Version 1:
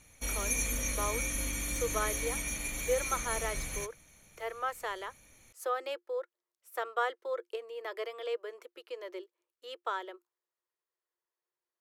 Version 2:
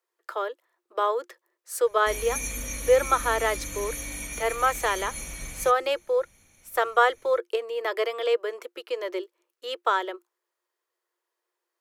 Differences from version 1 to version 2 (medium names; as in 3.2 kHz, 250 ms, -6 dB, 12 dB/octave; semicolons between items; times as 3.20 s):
speech +11.5 dB; background: entry +1.85 s